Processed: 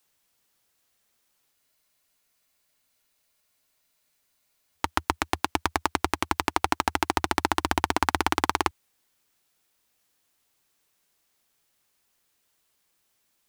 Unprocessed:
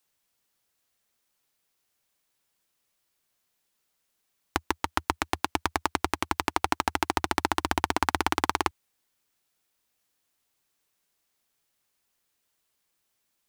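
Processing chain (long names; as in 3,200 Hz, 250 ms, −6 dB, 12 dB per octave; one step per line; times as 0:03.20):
in parallel at −1 dB: brickwall limiter −12 dBFS, peak gain reduction 9 dB
on the sum: frozen spectrum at 0:01.55, 3.22 s
level −1 dB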